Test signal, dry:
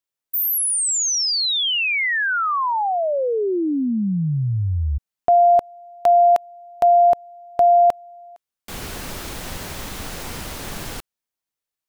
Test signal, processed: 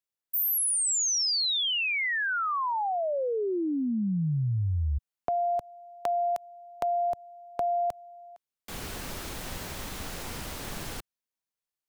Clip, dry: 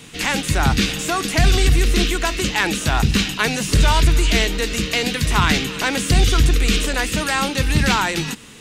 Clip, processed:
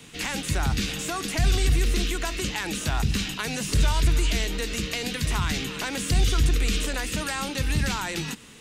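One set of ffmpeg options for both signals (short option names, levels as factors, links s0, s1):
-filter_complex "[0:a]acrossover=split=140|5000[s0][s1][s2];[s1]acompressor=threshold=0.1:ratio=6:attack=4.9:release=194:knee=2.83:detection=peak[s3];[s0][s3][s2]amix=inputs=3:normalize=0,volume=0.501"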